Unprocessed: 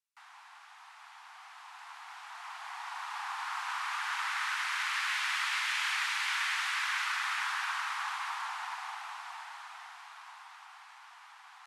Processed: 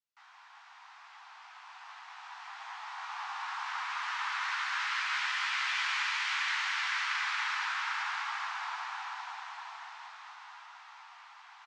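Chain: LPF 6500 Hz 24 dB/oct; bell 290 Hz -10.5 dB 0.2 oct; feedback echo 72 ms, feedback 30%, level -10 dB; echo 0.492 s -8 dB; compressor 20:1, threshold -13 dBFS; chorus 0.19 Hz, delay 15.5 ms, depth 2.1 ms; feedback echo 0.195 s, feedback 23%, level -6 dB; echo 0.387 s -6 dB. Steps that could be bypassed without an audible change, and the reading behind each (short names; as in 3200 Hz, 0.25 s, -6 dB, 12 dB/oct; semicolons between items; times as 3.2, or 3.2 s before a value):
bell 290 Hz: input band starts at 640 Hz; compressor, threshold -13 dBFS: input peak -19.5 dBFS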